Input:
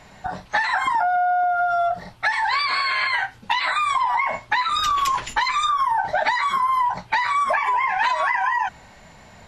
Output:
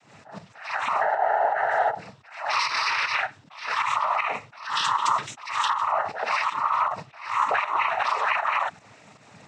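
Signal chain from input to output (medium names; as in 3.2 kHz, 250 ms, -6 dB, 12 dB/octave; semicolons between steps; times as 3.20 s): noise-vocoded speech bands 12; volume shaper 157 bpm, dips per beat 1, -9 dB, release 89 ms; attacks held to a fixed rise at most 110 dB/s; trim -2 dB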